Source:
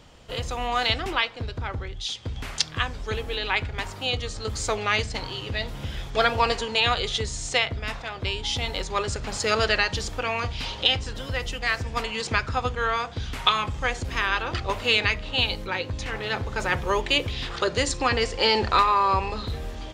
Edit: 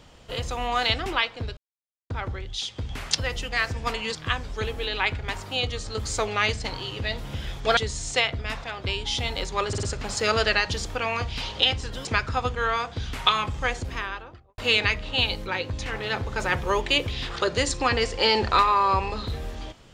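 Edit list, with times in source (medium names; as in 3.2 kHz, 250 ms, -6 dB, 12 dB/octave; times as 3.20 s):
1.57 s: insert silence 0.53 s
6.27–7.15 s: delete
9.06 s: stutter 0.05 s, 4 plays
11.28–12.25 s: move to 2.65 s
13.84–14.78 s: studio fade out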